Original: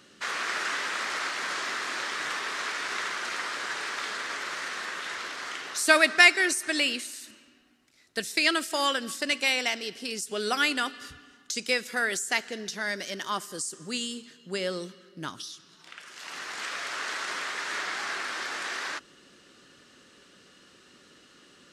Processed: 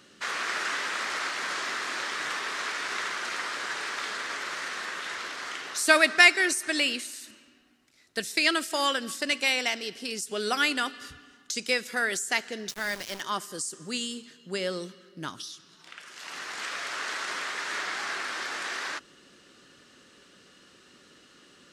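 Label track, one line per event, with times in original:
12.690000	13.210000	centre clipping without the shift under −35 dBFS

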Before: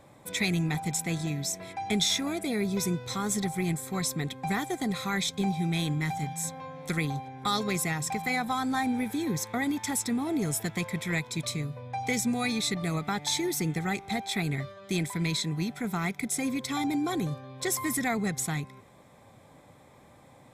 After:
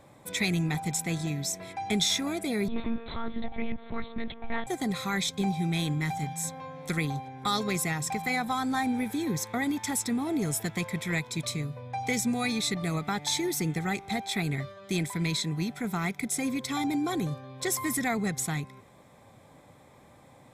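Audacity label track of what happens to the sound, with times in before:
2.680000	4.670000	one-pitch LPC vocoder at 8 kHz 230 Hz

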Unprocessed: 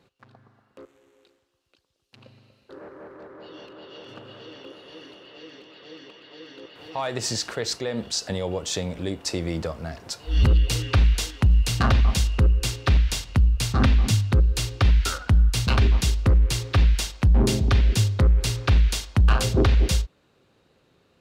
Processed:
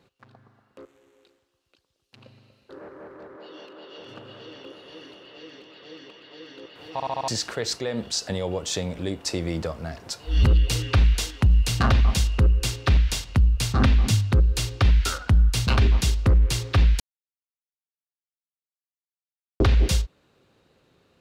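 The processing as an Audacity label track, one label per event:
3.360000	3.990000	high-pass filter 230 Hz
6.930000	6.930000	stutter in place 0.07 s, 5 plays
17.000000	19.600000	silence

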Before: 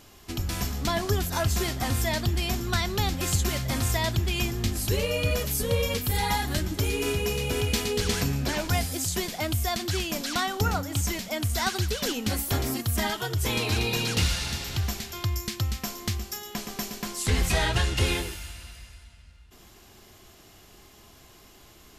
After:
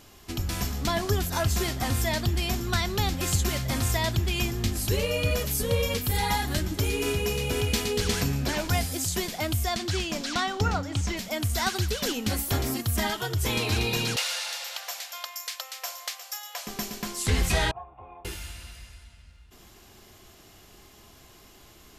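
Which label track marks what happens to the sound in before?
9.640000	11.160000	low-pass filter 9,800 Hz → 5,100 Hz
14.160000	16.670000	linear-phase brick-wall high-pass 470 Hz
17.710000	18.250000	formant resonators in series a

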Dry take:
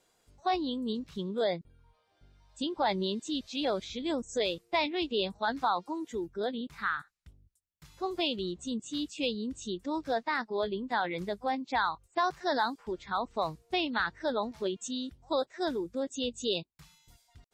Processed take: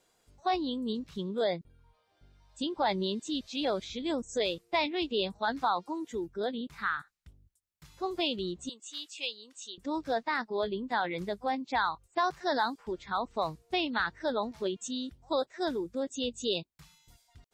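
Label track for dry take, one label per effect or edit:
8.690000	9.780000	high-pass filter 970 Hz

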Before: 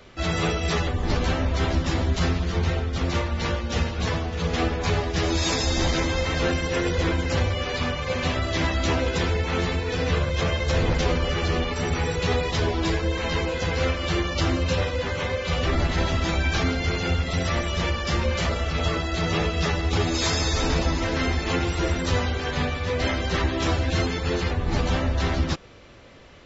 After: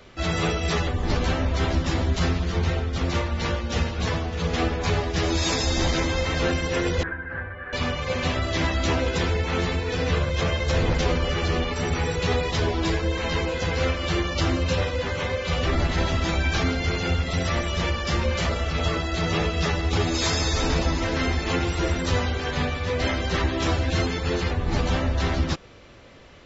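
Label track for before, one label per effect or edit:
7.030000	7.730000	transistor ladder low-pass 1,700 Hz, resonance 85%

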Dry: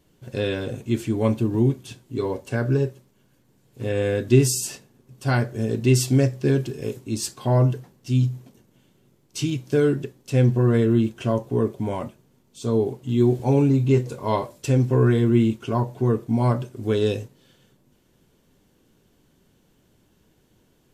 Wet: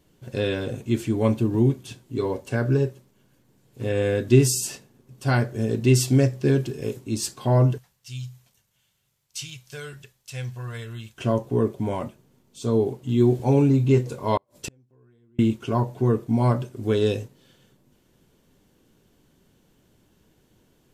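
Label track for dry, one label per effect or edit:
7.780000	11.180000	guitar amp tone stack bass-middle-treble 10-0-10
14.370000	15.390000	gate with flip shuts at −18 dBFS, range −40 dB

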